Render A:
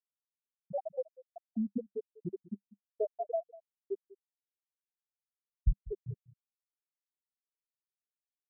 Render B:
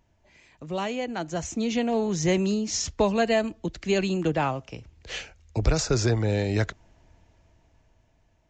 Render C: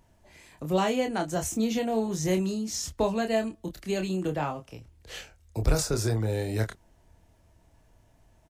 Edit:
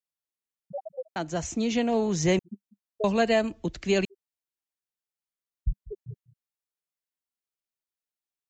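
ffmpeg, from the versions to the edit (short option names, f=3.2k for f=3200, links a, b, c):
-filter_complex "[1:a]asplit=2[a][b];[0:a]asplit=3[c][d][e];[c]atrim=end=1.162[f];[a]atrim=start=1.158:end=2.392[g];[d]atrim=start=2.388:end=3.042[h];[b]atrim=start=3.038:end=4.052[i];[e]atrim=start=4.048[j];[f][g]acrossfade=d=0.004:c1=hsin:c2=hsin[k];[k][h]acrossfade=d=0.004:c1=hsin:c2=hsin[l];[l][i]acrossfade=d=0.004:c1=hsin:c2=hsin[m];[m][j]acrossfade=d=0.004:c1=hsin:c2=hsin"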